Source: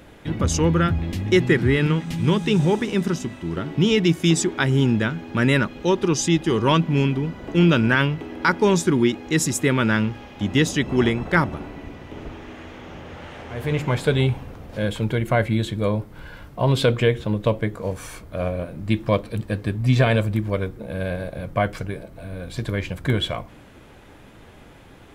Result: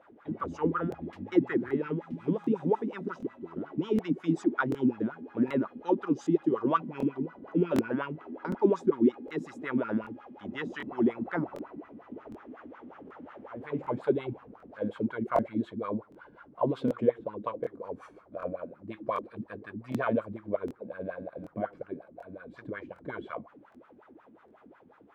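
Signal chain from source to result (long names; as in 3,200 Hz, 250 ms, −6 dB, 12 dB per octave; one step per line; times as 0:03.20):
LFO wah 5.5 Hz 230–1,400 Hz, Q 5.9
regular buffer underruns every 0.76 s, samples 1,024, repeat, from 0:00.90
level +2 dB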